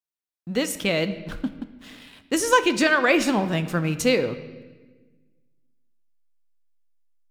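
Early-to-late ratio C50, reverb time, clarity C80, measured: 12.5 dB, 1.3 s, 14.5 dB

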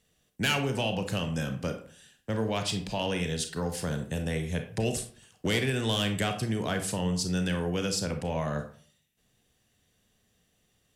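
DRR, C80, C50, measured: 5.5 dB, 13.5 dB, 9.5 dB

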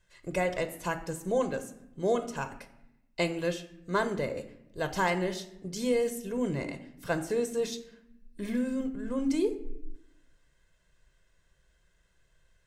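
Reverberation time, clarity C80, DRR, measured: 0.85 s, 15.0 dB, 8.5 dB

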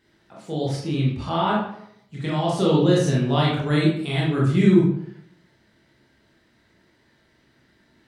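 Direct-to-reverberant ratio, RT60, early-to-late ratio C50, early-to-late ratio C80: −5.5 dB, 0.70 s, 2.0 dB, 7.0 dB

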